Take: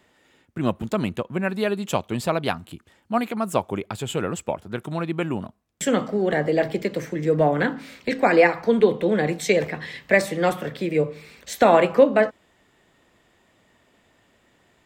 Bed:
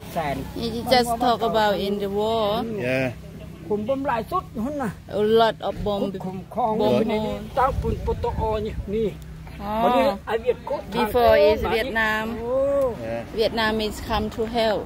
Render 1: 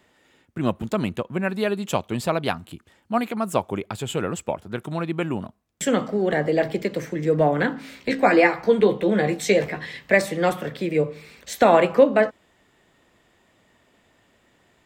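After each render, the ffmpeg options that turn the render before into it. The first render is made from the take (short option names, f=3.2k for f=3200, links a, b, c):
-filter_complex "[0:a]asettb=1/sr,asplit=3[a][b][c];[a]atrim=end=7.824[d];[b]atrim=start=7.82:end=9.85,asetpts=PTS-STARTPTS,afade=t=in:d=0.004:c=qsin,afade=t=out:st=2.026:d=0.004:c=qsin,asplit=2[e][f];[f]adelay=15,volume=-6.5dB[g];[e][g]amix=inputs=2:normalize=0,atrim=end_sample=89523[h];[c]atrim=start=9.846[i];[d][h]acrossfade=d=0.004:c1=hsin:c2=qsin[j];[j][i]acrossfade=d=0.004:c1=qsin:c2=hsin"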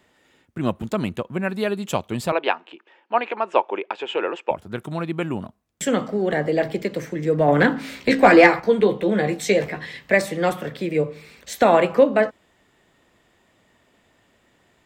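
-filter_complex "[0:a]asettb=1/sr,asplit=3[a][b][c];[a]atrim=end=2.324[d];[b]atrim=start=2.32:end=4.51,asetpts=PTS-STARTPTS,afade=t=in:d=0.004:c=qsin,afade=t=out:st=2.186:d=0.004:c=qsin,highpass=f=340:w=0.5412,highpass=f=340:w=1.3066,equalizer=f=360:t=q:w=4:g=5,equalizer=f=520:t=q:w=4:g=4,equalizer=f=910:t=q:w=4:g=9,equalizer=f=1.7k:t=q:w=4:g=5,equalizer=f=2.6k:t=q:w=4:g=8,equalizer=f=4.3k:t=q:w=4:g=-6,lowpass=f=4.5k:w=0.5412,lowpass=f=4.5k:w=1.3066[e];[c]atrim=start=4.506[f];[d][e]acrossfade=d=0.004:c1=hsin:c2=qsin[g];[g][f]acrossfade=d=0.004:c1=qsin:c2=hsin,asettb=1/sr,asplit=3[h][i][j];[h]atrim=end=7.484[k];[i]atrim=start=7.48:end=8.6,asetpts=PTS-STARTPTS,afade=t=in:d=0.004:c=qsin,afade=t=out:st=1.116:d=0.004:c=qsin,acontrast=54[l];[j]atrim=start=8.596[m];[k][l]acrossfade=d=0.004:c1=hsin:c2=qsin[n];[n][m]acrossfade=d=0.004:c1=qsin:c2=hsin"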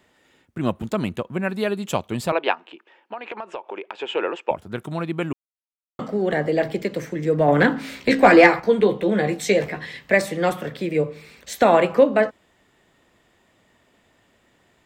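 -filter_complex "[0:a]asplit=3[a][b][c];[a]afade=t=out:st=2.54:d=0.02[d];[b]acompressor=threshold=-27dB:ratio=16:attack=3.2:release=140:knee=1:detection=peak,afade=t=in:st=2.54:d=0.02,afade=t=out:st=3.99:d=0.02[e];[c]afade=t=in:st=3.99:d=0.02[f];[d][e][f]amix=inputs=3:normalize=0,asplit=3[g][h][i];[g]atrim=end=5.33,asetpts=PTS-STARTPTS,afade=t=out:st=5.326:d=0.004:c=hsin[j];[h]atrim=start=5.33:end=5.99,asetpts=PTS-STARTPTS,volume=0[k];[i]atrim=start=5.99,asetpts=PTS-STARTPTS,afade=t=in:d=0.004:c=hsin[l];[j][k][l]concat=n=3:v=0:a=1"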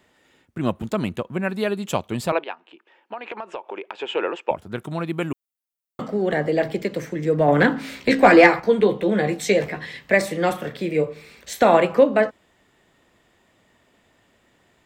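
-filter_complex "[0:a]asettb=1/sr,asplit=3[a][b][c];[a]atrim=end=5.064[d];[b]atrim=start=5.06:end=6.02,asetpts=PTS-STARTPTS,afade=t=in:d=0.004:c=qsin,afade=t=out:st=0.956:d=0.004:c=qsin,highshelf=f=9.8k:g=11[e];[c]atrim=start=6.016[f];[d][e]acrossfade=d=0.004:c1=hsin:c2=qsin[g];[g][f]acrossfade=d=0.004:c1=qsin:c2=hsin,asettb=1/sr,asplit=3[h][i][j];[h]atrim=end=10.174[k];[i]atrim=start=10.17:end=11.78,asetpts=PTS-STARTPTS,afade=t=in:d=0.004:c=qsin,afade=t=out:st=1.606:d=0.004:c=qsin,asplit=2[l][m];[m]adelay=36,volume=-11.5dB[n];[l][n]amix=inputs=2:normalize=0,atrim=end_sample=71001[o];[j]atrim=start=11.776[p];[k][o]acrossfade=d=0.004:c1=hsin:c2=qsin[q];[q][p]acrossfade=d=0.004:c1=qsin:c2=hsin,asplit=2[r][s];[r]atrim=end=2.44,asetpts=PTS-STARTPTS,afade=t=out:st=2.436:d=0.004:c=hsin:silence=0.199526[t];[s]atrim=start=2.44,asetpts=PTS-STARTPTS,afade=t=in:d=0.7:silence=0.199526[u];[t][u]concat=n=2:v=0:a=1"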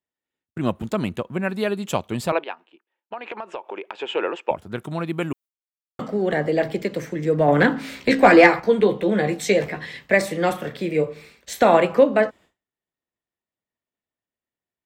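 -af "agate=range=-33dB:threshold=-41dB:ratio=3:detection=peak"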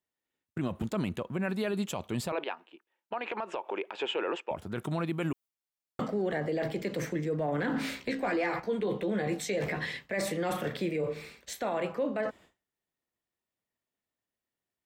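-af "areverse,acompressor=threshold=-24dB:ratio=6,areverse,alimiter=limit=-23dB:level=0:latency=1:release=35"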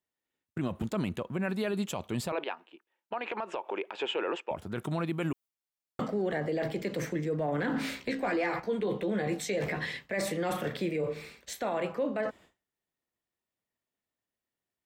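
-af anull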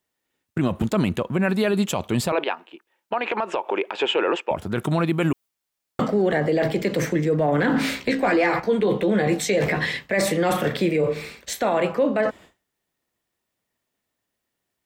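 -af "volume=10.5dB"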